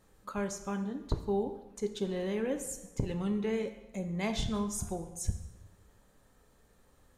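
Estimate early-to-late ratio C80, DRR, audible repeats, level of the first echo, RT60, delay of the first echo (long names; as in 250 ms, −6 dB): 12.5 dB, 7.0 dB, no echo audible, no echo audible, 1.0 s, no echo audible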